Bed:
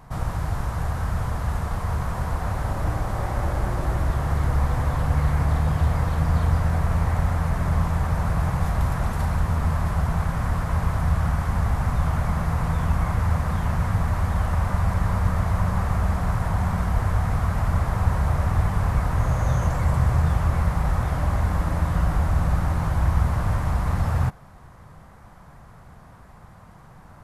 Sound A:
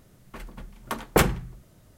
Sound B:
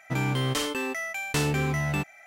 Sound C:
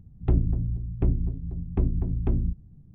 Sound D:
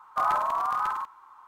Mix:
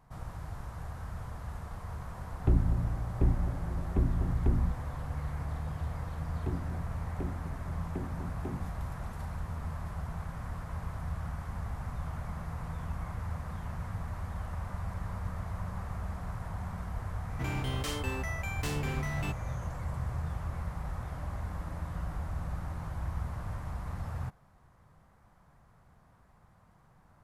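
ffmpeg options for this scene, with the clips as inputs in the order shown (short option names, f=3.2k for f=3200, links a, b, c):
-filter_complex "[3:a]asplit=2[a][b];[0:a]volume=-15dB[c];[b]highpass=180[d];[2:a]volume=24dB,asoftclip=hard,volume=-24dB[e];[a]atrim=end=2.94,asetpts=PTS-STARTPTS,volume=-3.5dB,afade=t=in:d=0.004:c=hsin,afade=t=out:st=2.936:d=0.004:c=hsin,adelay=2190[f];[d]atrim=end=2.94,asetpts=PTS-STARTPTS,volume=-7.5dB,afade=t=in:d=0.004:c=hsin,afade=t=out:st=2.936:d=0.004:c=hsin,adelay=272538S[g];[e]atrim=end=2.26,asetpts=PTS-STARTPTS,volume=-7.5dB,afade=t=in:d=0.004:c=hsin,afade=t=out:st=2.256:d=0.004:c=hsin,adelay=17290[h];[c][f][g][h]amix=inputs=4:normalize=0"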